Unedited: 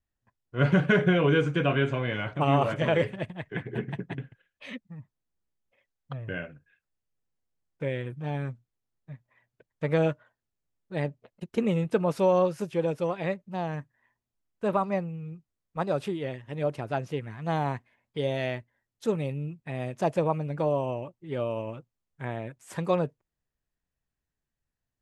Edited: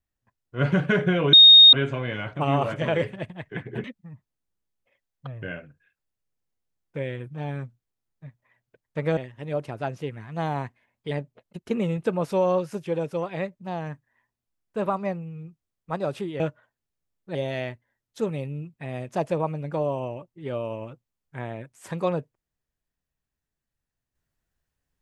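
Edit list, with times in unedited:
0:01.33–0:01.73: beep over 3,710 Hz −7 dBFS
0:03.84–0:04.70: remove
0:10.03–0:10.98: swap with 0:16.27–0:18.21

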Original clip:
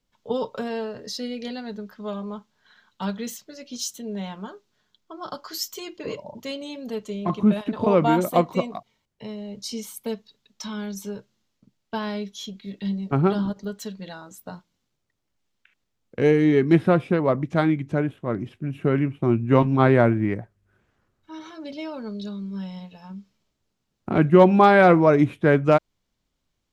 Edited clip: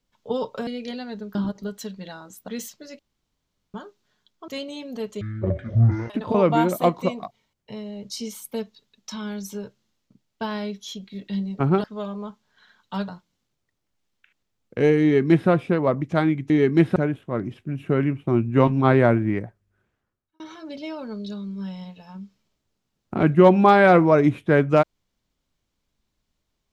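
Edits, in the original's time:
0:00.67–0:01.24: remove
0:01.92–0:03.16: swap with 0:13.36–0:14.49
0:03.67–0:04.42: fill with room tone
0:05.16–0:06.41: remove
0:07.14–0:07.62: play speed 54%
0:16.44–0:16.90: duplicate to 0:17.91
0:20.28–0:21.35: fade out

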